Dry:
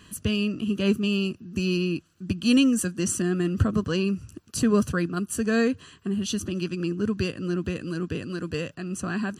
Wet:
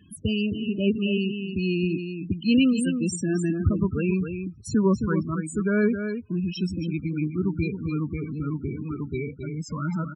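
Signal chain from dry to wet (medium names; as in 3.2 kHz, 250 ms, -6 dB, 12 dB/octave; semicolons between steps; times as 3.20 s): gliding tape speed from 102% -> 83%; high-pass 45 Hz 24 dB/octave; delay 267 ms -7.5 dB; loudest bins only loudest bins 16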